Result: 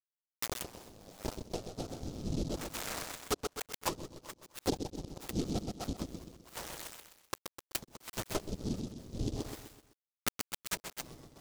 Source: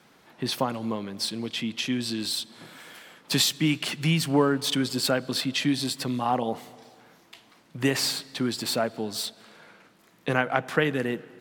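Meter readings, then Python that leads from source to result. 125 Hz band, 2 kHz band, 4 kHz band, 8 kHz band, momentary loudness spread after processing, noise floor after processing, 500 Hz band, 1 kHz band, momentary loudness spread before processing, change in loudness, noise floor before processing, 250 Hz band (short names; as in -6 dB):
-11.0 dB, -15.5 dB, -16.0 dB, -8.5 dB, 10 LU, under -85 dBFS, -12.5 dB, -13.0 dB, 11 LU, -13.0 dB, -59 dBFS, -13.0 dB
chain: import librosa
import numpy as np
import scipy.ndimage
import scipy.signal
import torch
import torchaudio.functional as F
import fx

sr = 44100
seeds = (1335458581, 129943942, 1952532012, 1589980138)

p1 = fx.fade_in_head(x, sr, length_s=3.01)
p2 = fx.level_steps(p1, sr, step_db=24)
p3 = p1 + (p2 * librosa.db_to_amplitude(1.5))
p4 = fx.gate_flip(p3, sr, shuts_db=-14.0, range_db=-37)
p5 = np.clip(p4, -10.0 ** (-23.0 / 20.0), 10.0 ** (-23.0 / 20.0))
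p6 = fx.freq_invert(p5, sr, carrier_hz=3900)
p7 = fx.quant_dither(p6, sr, seeds[0], bits=6, dither='none')
p8 = p7 + fx.echo_feedback(p7, sr, ms=127, feedback_pct=41, wet_db=-4.5, dry=0)
p9 = (np.kron(scipy.signal.resample_poly(p8, 1, 2), np.eye(2)[0]) * 2)[:len(p8)]
p10 = fx.env_lowpass_down(p9, sr, base_hz=330.0, full_db=-26.5)
p11 = fx.noise_mod_delay(p10, sr, seeds[1], noise_hz=4700.0, depth_ms=0.1)
y = p11 * librosa.db_to_amplitude(4.5)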